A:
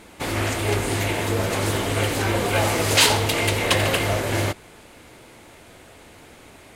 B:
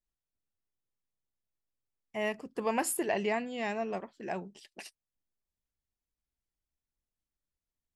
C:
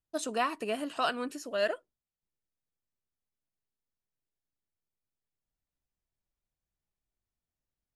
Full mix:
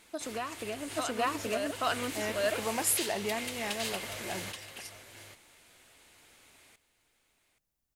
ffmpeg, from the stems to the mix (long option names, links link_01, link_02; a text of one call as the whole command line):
ffmpeg -i stem1.wav -i stem2.wav -i stem3.wav -filter_complex "[0:a]tiltshelf=frequency=1300:gain=-7,volume=-14dB,asplit=2[link_01][link_02];[link_02]volume=-13.5dB[link_03];[1:a]aexciter=amount=3.1:drive=3.8:freq=5000,volume=-3.5dB[link_04];[2:a]volume=3dB,asplit=2[link_05][link_06];[link_06]volume=-4dB[link_07];[link_01][link_05]amix=inputs=2:normalize=0,acompressor=threshold=-37dB:ratio=3,volume=0dB[link_08];[link_03][link_07]amix=inputs=2:normalize=0,aecho=0:1:826:1[link_09];[link_04][link_08][link_09]amix=inputs=3:normalize=0" out.wav